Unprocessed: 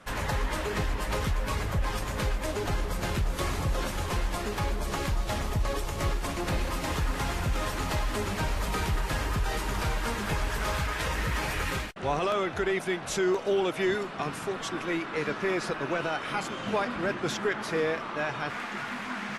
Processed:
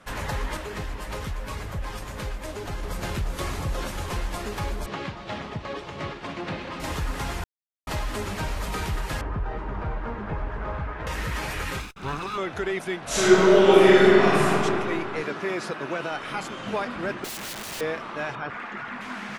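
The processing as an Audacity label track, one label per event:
0.570000	2.830000	gain -3.5 dB
4.860000	6.800000	Chebyshev band-pass 150–3400 Hz
7.440000	7.870000	mute
9.210000	11.070000	LPF 1300 Hz
11.800000	12.380000	minimum comb delay 0.79 ms
13.040000	14.480000	reverb throw, RT60 2.7 s, DRR -12 dB
15.220000	16.120000	HPF 120 Hz
17.240000	17.810000	wrapped overs gain 29.5 dB
18.350000	19.010000	formant sharpening exponent 1.5

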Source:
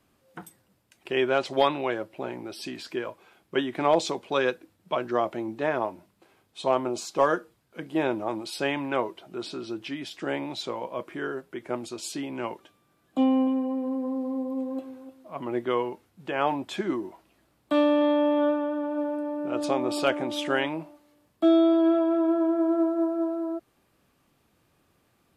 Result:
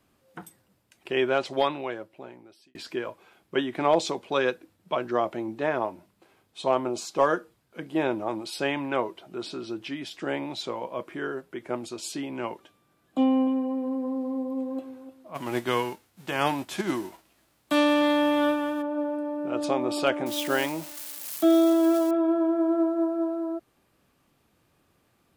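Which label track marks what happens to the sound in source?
1.270000	2.750000	fade out
15.340000	18.810000	spectral whitening exponent 0.6
20.260000	22.110000	switching spikes of -26.5 dBFS

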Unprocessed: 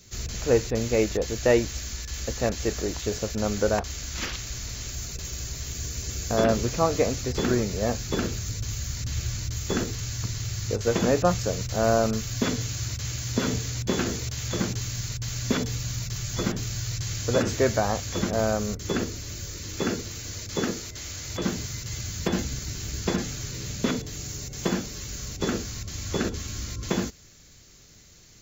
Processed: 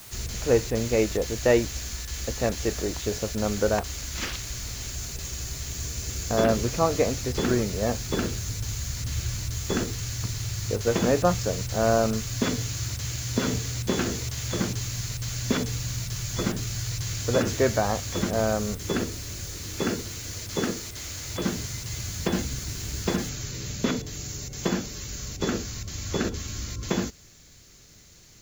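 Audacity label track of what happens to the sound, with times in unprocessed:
23.290000	23.290000	noise floor step -46 dB -66 dB

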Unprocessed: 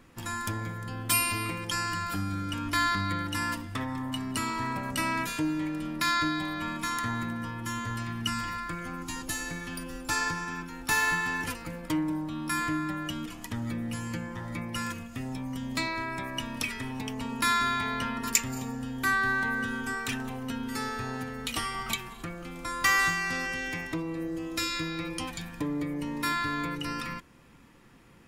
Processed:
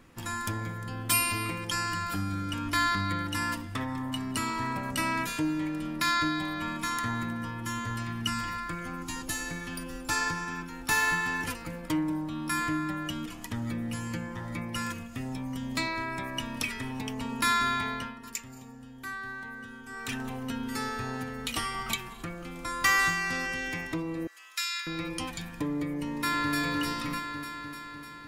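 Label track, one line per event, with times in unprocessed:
17.690000	20.350000	dip -12 dB, fades 0.47 s equal-power
24.270000	24.870000	HPF 1300 Hz 24 dB/oct
26.030000	26.530000	echo throw 0.3 s, feedback 70%, level -1.5 dB

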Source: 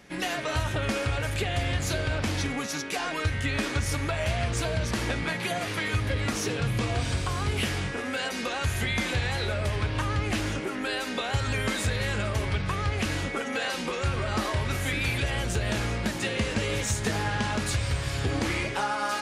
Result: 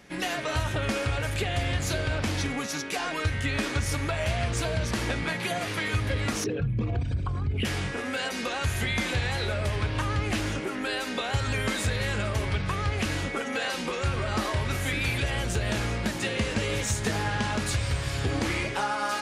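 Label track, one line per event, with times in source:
6.440000	7.650000	formant sharpening exponent 2

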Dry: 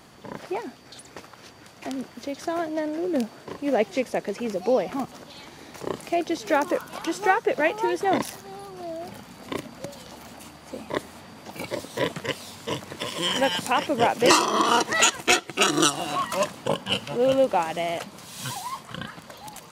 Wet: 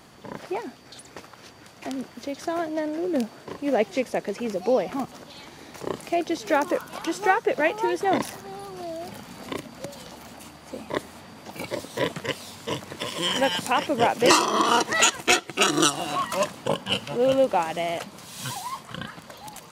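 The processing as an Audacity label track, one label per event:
8.230000	10.090000	three-band squash depth 40%

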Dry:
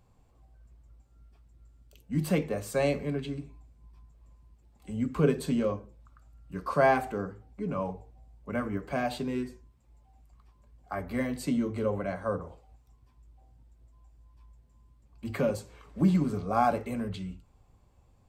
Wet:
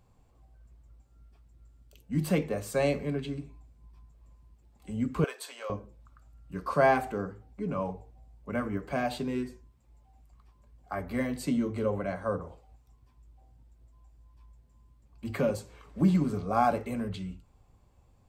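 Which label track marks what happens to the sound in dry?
5.240000	5.700000	HPF 700 Hz 24 dB/oct

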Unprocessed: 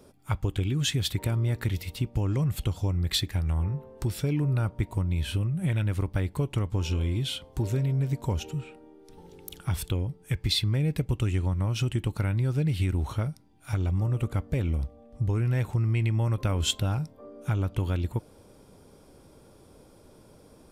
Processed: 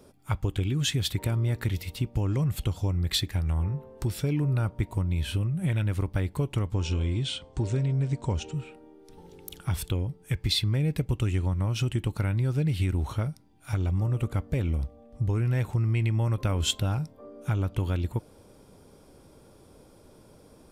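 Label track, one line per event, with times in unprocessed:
6.740000	8.570000	steep low-pass 9200 Hz 96 dB/oct

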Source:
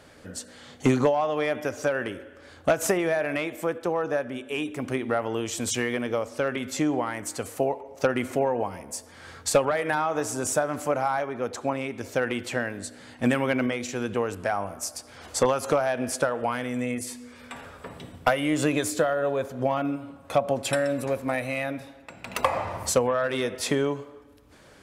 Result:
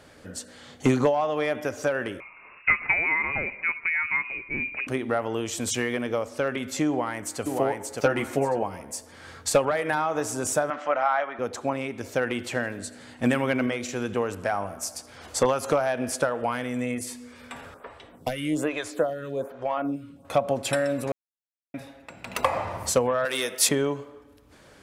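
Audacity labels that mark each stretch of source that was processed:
2.200000	4.870000	inverted band carrier 2700 Hz
6.880000	7.420000	echo throw 0.58 s, feedback 25%, level -3 dB
8.010000	8.630000	doubler 14 ms -4 dB
10.700000	11.390000	speaker cabinet 400–4700 Hz, peaks and dips at 410 Hz -8 dB, 660 Hz +4 dB, 1300 Hz +6 dB, 1900 Hz +6 dB, 3100 Hz +5 dB, 4500 Hz -6 dB
12.300000	15.060000	feedback echo 82 ms, feedback 59%, level -21 dB
17.740000	20.250000	photocell phaser 1.2 Hz
21.120000	21.740000	mute
23.250000	23.690000	RIAA curve recording

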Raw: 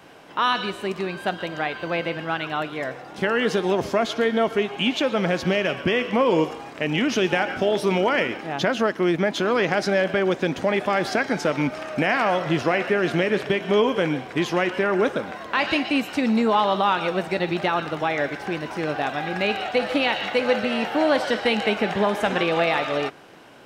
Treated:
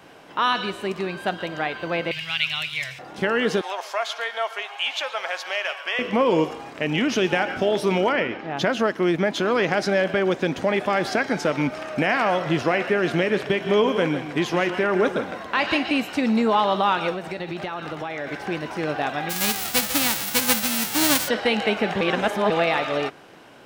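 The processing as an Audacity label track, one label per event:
2.110000	2.990000	EQ curve 140 Hz 0 dB, 250 Hz -27 dB, 1600 Hz -6 dB, 2300 Hz +11 dB
3.610000	5.990000	HPF 700 Hz 24 dB/oct
8.120000	8.570000	air absorption 150 m
11.470000	12.500000	short-mantissa float mantissa of 8-bit
13.410000	16.060000	echo 0.163 s -11 dB
17.130000	18.270000	compressor 4:1, threshold -27 dBFS
19.290000	21.270000	spectral whitening exponent 0.1
22.010000	22.500000	reverse

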